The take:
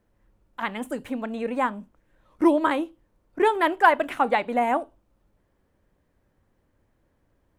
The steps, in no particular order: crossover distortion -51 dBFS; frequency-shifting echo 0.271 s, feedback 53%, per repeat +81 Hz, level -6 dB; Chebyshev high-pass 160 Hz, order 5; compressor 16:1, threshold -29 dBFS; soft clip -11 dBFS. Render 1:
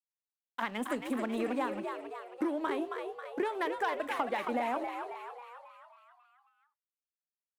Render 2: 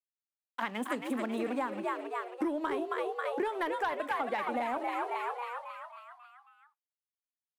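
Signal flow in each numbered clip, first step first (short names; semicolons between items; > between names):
soft clip > Chebyshev high-pass > crossover distortion > compressor > frequency-shifting echo; crossover distortion > Chebyshev high-pass > frequency-shifting echo > soft clip > compressor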